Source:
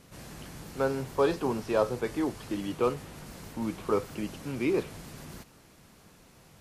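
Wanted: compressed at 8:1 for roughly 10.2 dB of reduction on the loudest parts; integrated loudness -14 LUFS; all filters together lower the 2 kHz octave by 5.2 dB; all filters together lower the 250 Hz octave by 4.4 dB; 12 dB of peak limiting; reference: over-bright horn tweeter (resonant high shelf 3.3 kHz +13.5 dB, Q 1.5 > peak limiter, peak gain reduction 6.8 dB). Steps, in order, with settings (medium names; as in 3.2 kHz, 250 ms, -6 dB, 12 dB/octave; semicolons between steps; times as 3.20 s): peaking EQ 250 Hz -6 dB; peaking EQ 2 kHz -4.5 dB; compression 8:1, threshold -32 dBFS; peak limiter -33.5 dBFS; resonant high shelf 3.3 kHz +13.5 dB, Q 1.5; trim +26.5 dB; peak limiter -5.5 dBFS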